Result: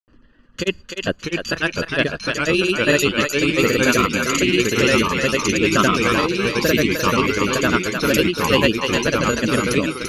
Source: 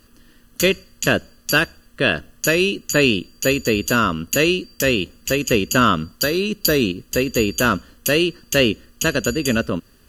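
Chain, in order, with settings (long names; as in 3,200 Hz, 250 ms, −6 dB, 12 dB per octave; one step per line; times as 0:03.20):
granular cloud 100 ms, grains 20 per second, spray 100 ms, pitch spread up and down by 0 semitones
reverb reduction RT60 0.65 s
low-pass that shuts in the quiet parts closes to 2,100 Hz, open at −15 dBFS
feedback echo with a high-pass in the loop 303 ms, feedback 19%, high-pass 560 Hz, level −4.5 dB
delay with pitch and tempo change per echo 572 ms, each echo −2 semitones, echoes 2
level +1 dB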